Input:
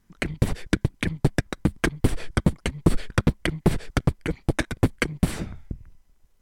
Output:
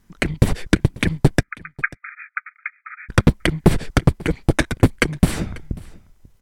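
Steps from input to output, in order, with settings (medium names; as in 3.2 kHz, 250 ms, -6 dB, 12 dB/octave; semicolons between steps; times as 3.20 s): 1.43–3.09 s: brick-wall FIR band-pass 1.2–2.5 kHz; delay 541 ms -22.5 dB; trim +6.5 dB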